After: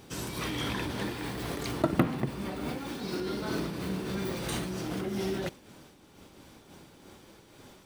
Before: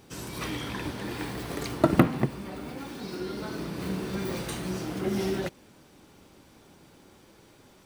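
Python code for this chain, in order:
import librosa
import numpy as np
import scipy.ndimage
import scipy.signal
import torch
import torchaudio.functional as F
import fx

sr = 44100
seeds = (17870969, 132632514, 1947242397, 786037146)

p1 = fx.peak_eq(x, sr, hz=3400.0, db=2.0, octaves=0.33)
p2 = fx.over_compress(p1, sr, threshold_db=-35.0, ratio=-0.5)
p3 = p1 + (p2 * 10.0 ** (-2.0 / 20.0))
p4 = fx.am_noise(p3, sr, seeds[0], hz=5.7, depth_pct=65)
y = p4 * 10.0 ** (-2.0 / 20.0)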